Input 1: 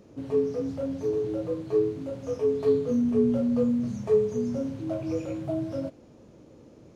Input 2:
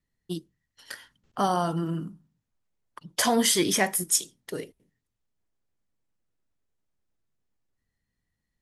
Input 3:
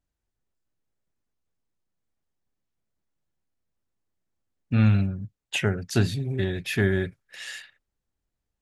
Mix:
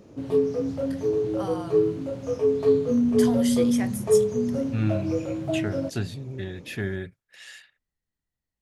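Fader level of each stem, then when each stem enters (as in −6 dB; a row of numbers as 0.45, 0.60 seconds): +3.0, −11.0, −7.0 decibels; 0.00, 0.00, 0.00 seconds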